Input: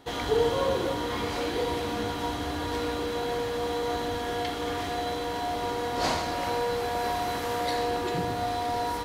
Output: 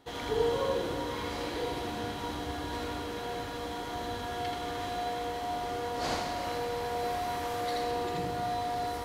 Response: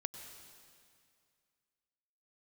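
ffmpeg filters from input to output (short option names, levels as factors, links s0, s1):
-filter_complex "[0:a]asplit=2[s0][s1];[1:a]atrim=start_sample=2205,adelay=81[s2];[s1][s2]afir=irnorm=-1:irlink=0,volume=0.944[s3];[s0][s3]amix=inputs=2:normalize=0,volume=0.447"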